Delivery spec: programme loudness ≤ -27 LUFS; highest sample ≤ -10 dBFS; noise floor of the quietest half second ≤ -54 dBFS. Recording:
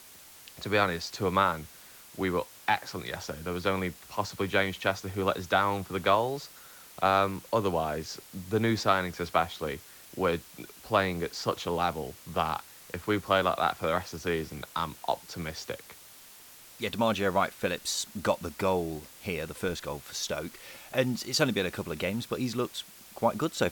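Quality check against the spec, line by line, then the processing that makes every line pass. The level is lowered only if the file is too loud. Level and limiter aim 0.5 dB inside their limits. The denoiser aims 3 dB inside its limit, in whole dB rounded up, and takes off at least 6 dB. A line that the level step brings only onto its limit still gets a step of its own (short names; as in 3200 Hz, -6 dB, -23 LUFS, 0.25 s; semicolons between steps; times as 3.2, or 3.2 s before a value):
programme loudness -30.0 LUFS: OK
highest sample -10.5 dBFS: OK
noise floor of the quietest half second -52 dBFS: fail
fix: denoiser 6 dB, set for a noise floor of -52 dBFS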